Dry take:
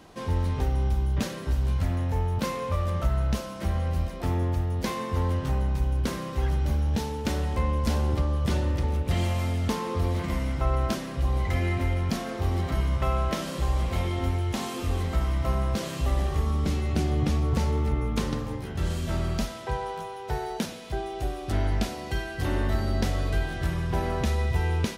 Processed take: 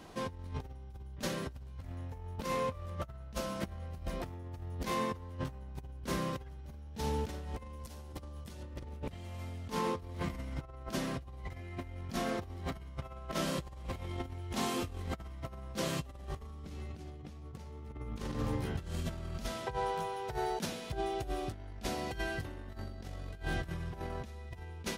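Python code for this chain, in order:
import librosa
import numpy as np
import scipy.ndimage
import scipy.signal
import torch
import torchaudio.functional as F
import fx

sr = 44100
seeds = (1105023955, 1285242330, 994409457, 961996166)

y = fx.high_shelf(x, sr, hz=5100.0, db=11.5, at=(7.59, 8.63))
y = fx.over_compress(y, sr, threshold_db=-31.0, ratio=-0.5)
y = y * 10.0 ** (-7.0 / 20.0)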